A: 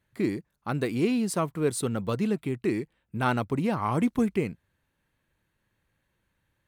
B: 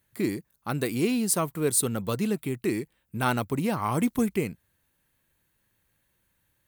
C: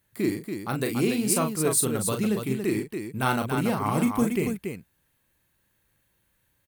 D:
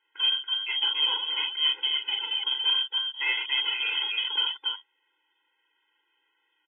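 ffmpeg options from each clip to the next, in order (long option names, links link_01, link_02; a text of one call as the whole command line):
ffmpeg -i in.wav -af "aemphasis=mode=production:type=50fm" out.wav
ffmpeg -i in.wav -af "aecho=1:1:37.9|282.8:0.501|0.501" out.wav
ffmpeg -i in.wav -af "asoftclip=type=tanh:threshold=-25.5dB,lowpass=frequency=3000:width_type=q:width=0.5098,lowpass=frequency=3000:width_type=q:width=0.6013,lowpass=frequency=3000:width_type=q:width=0.9,lowpass=frequency=3000:width_type=q:width=2.563,afreqshift=-3500,afftfilt=real='re*eq(mod(floor(b*sr/1024/270),2),1)':imag='im*eq(mod(floor(b*sr/1024/270),2),1)':win_size=1024:overlap=0.75,volume=6.5dB" out.wav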